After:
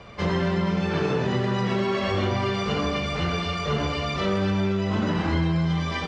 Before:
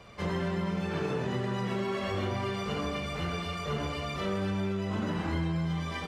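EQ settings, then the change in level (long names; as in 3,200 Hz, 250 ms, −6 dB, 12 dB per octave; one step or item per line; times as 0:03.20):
low-pass filter 8,700 Hz 24 dB per octave
dynamic equaliser 5,100 Hz, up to +5 dB, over −58 dBFS, Q 1
high-frequency loss of the air 80 metres
+7.5 dB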